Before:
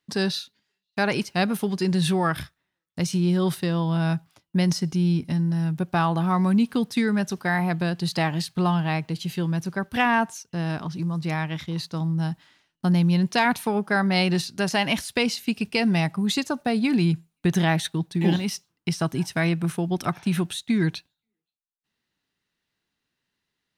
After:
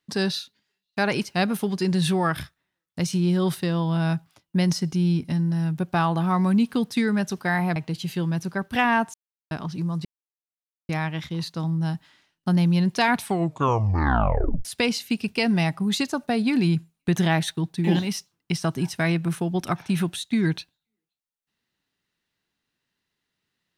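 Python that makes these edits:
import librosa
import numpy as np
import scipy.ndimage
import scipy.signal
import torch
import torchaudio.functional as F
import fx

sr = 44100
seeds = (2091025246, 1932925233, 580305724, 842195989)

y = fx.edit(x, sr, fx.cut(start_s=7.76, length_s=1.21),
    fx.silence(start_s=10.35, length_s=0.37),
    fx.insert_silence(at_s=11.26, length_s=0.84),
    fx.tape_stop(start_s=13.52, length_s=1.5), tone=tone)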